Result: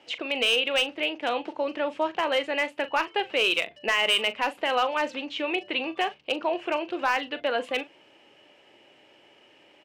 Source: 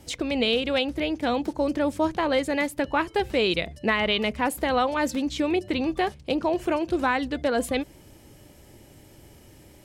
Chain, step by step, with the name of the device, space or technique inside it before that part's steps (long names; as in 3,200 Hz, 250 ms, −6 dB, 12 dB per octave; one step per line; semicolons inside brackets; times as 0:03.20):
megaphone (band-pass filter 500–2,900 Hz; parametric band 2,800 Hz +11.5 dB 0.39 octaves; hard clipping −15.5 dBFS, distortion −18 dB; double-tracking delay 40 ms −13.5 dB)